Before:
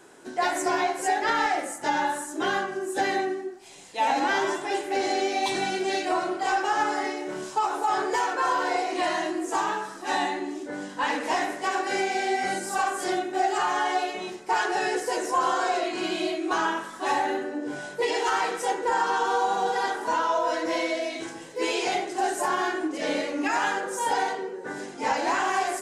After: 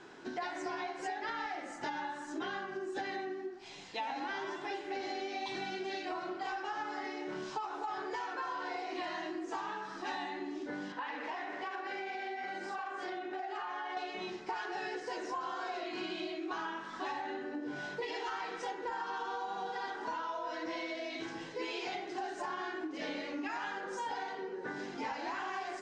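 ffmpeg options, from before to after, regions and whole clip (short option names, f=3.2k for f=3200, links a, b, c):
-filter_complex "[0:a]asettb=1/sr,asplit=3[a][b][c];[a]atrim=end=10.924[d];[b]atrim=start=10.92:end=13.97,asetpts=PTS-STARTPTS,afade=t=in:d=0.004:c=qsin,afade=t=out:st=3.046:d=0.004:c=qsin,bass=f=250:g=-12,treble=f=4k:g=-10,acompressor=threshold=-33dB:ratio=2.5:attack=3.2:release=140:knee=1:detection=peak[e];[c]atrim=start=13.966[f];[d][e]acrossfade=d=0.004:c1=hsin:c2=qsin[g];[g][f]acrossfade=d=0.004:c1=qsin:c2=hsin,lowpass=f=5.3k:w=0.5412,lowpass=f=5.3k:w=1.3066,equalizer=f=550:t=o:w=0.65:g=-5.5,acompressor=threshold=-37dB:ratio=6"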